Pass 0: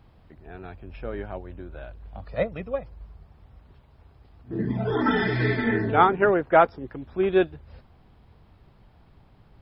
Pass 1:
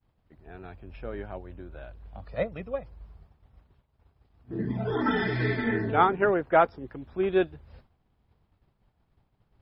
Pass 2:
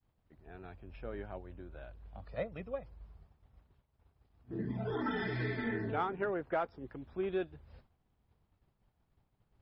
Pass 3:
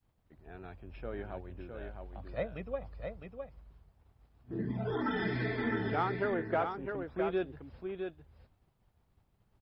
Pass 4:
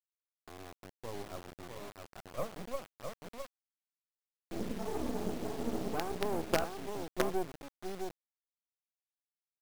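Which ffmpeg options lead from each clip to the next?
ffmpeg -i in.wav -af "agate=range=-33dB:threshold=-45dB:ratio=3:detection=peak,volume=-3.5dB" out.wav
ffmpeg -i in.wav -filter_complex "[0:a]asplit=2[link_01][link_02];[link_02]asoftclip=type=tanh:threshold=-17dB,volume=-7.5dB[link_03];[link_01][link_03]amix=inputs=2:normalize=0,acompressor=threshold=-24dB:ratio=2.5,volume=-9dB" out.wav
ffmpeg -i in.wav -af "aecho=1:1:659:0.501,volume=2dB" out.wav
ffmpeg -i in.wav -af "asuperpass=centerf=350:order=20:qfactor=0.52,acrusher=bits=5:dc=4:mix=0:aa=0.000001,volume=2.5dB" out.wav

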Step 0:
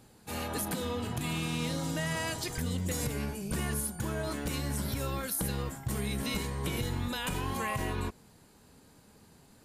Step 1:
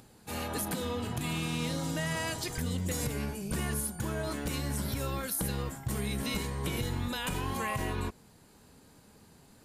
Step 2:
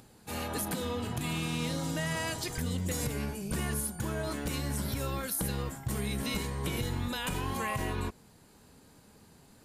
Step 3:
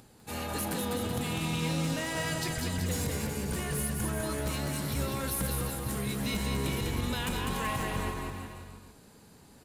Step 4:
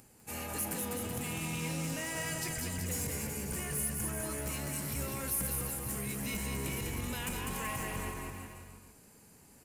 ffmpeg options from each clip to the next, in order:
ffmpeg -i in.wav -af "acompressor=mode=upward:threshold=-54dB:ratio=2.5" out.wav
ffmpeg -i in.wav -af anull out.wav
ffmpeg -i in.wav -filter_complex "[0:a]asoftclip=type=hard:threshold=-28.5dB,asplit=2[link_01][link_02];[link_02]aecho=0:1:200|380|542|687.8|819:0.631|0.398|0.251|0.158|0.1[link_03];[link_01][link_03]amix=inputs=2:normalize=0" out.wav
ffmpeg -i in.wav -filter_complex "[0:a]aexciter=amount=1.6:drive=1.3:freq=2000,asplit=2[link_01][link_02];[link_02]asoftclip=type=hard:threshold=-32dB,volume=-8dB[link_03];[link_01][link_03]amix=inputs=2:normalize=0,volume=-8dB" out.wav

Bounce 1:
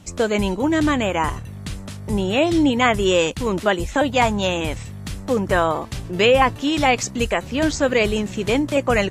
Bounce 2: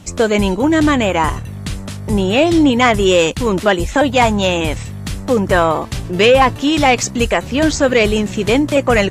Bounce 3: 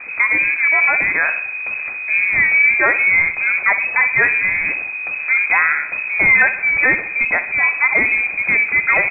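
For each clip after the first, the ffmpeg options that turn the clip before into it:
ffmpeg -i in.wav -af "acontrast=64" out.wav
ffmpeg -i in.wav -af "aeval=exprs='val(0)+0.5*0.0531*sgn(val(0))':channel_layout=same,aecho=1:1:62|124|186|248|310|372:0.224|0.121|0.0653|0.0353|0.019|0.0103,lowpass=frequency=2200:width_type=q:width=0.5098,lowpass=frequency=2200:width_type=q:width=0.6013,lowpass=frequency=2200:width_type=q:width=0.9,lowpass=frequency=2200:width_type=q:width=2.563,afreqshift=-2600,volume=-3dB" out.wav

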